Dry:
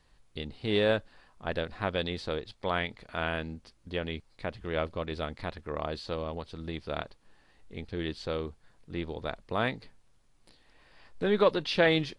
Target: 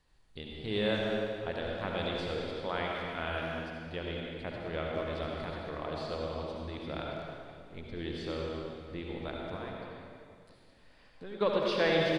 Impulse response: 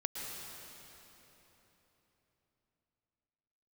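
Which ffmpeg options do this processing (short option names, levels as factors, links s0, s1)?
-filter_complex "[0:a]asettb=1/sr,asplit=3[s0][s1][s2];[s0]atrim=end=9.554[s3];[s1]atrim=start=9.55:end=11.41,asetpts=PTS-STARTPTS,afade=t=in:d=0.004:c=qsin,afade=t=out:st=1.856:d=0.004:c=qsin,acompressor=threshold=0.00501:ratio=2[s4];[s2]atrim=start=11.406[s5];[s3][s4]acrossfade=d=0.004:c1=hsin:c2=qsin[s6];[s6][s5]acrossfade=d=0.004:c1=qsin:c2=hsin,asplit=2[s7][s8];[s8]adelay=200,highpass=300,lowpass=3400,asoftclip=type=hard:threshold=0.1,volume=0.355[s9];[s7][s9]amix=inputs=2:normalize=0[s10];[1:a]atrim=start_sample=2205,asetrate=74970,aresample=44100[s11];[s10][s11]afir=irnorm=-1:irlink=0"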